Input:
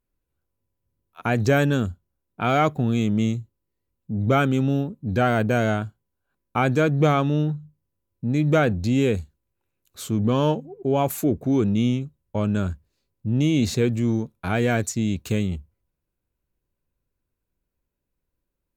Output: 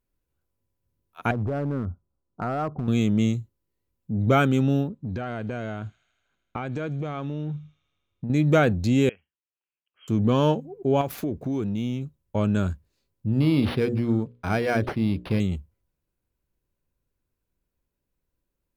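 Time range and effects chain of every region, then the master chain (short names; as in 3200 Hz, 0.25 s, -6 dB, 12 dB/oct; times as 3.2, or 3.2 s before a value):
1.31–2.88 steep low-pass 1400 Hz 72 dB/oct + compressor 8:1, threshold -22 dBFS + hard clip -21.5 dBFS
4.88–8.3 air absorption 98 m + compressor 12:1, threshold -26 dBFS + thin delay 79 ms, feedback 77%, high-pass 3900 Hz, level -13 dB
9.09–10.08 brick-wall FIR low-pass 3300 Hz + differentiator
11.01–12.05 median filter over 5 samples + compressor 3:1, threshold -25 dBFS
13.32–15.4 notches 60/120/180/240/300/360/420/480/540/600 Hz + decimation joined by straight lines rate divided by 6×
whole clip: dry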